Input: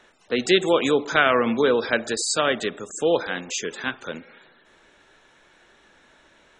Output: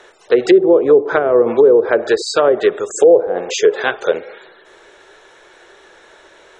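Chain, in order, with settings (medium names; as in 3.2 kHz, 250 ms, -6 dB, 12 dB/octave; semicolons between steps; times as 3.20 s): peaking EQ 2.6 kHz -3 dB 0.54 oct; time-frequency box 2.99–4.35 s, 390–830 Hz +6 dB; resonant low shelf 310 Hz -7 dB, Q 3; low-pass that closes with the level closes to 480 Hz, closed at -14 dBFS; loudness maximiser +11.5 dB; trim -1 dB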